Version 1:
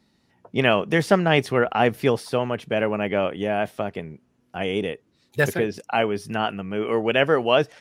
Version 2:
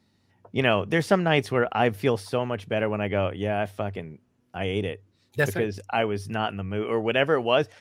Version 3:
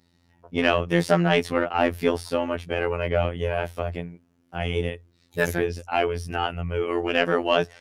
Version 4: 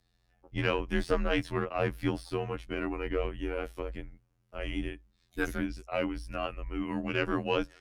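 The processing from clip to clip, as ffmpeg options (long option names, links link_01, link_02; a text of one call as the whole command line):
ffmpeg -i in.wav -af "equalizer=frequency=98:width=7.6:gain=14.5,volume=-3dB" out.wav
ffmpeg -i in.wav -af "acontrast=74,afftfilt=real='hypot(re,im)*cos(PI*b)':imag='0':win_size=2048:overlap=0.75,volume=-1.5dB" out.wav
ffmpeg -i in.wav -filter_complex "[0:a]acrossover=split=5700[link_01][link_02];[link_02]volume=35dB,asoftclip=hard,volume=-35dB[link_03];[link_01][link_03]amix=inputs=2:normalize=0,afreqshift=-140,volume=-8dB" out.wav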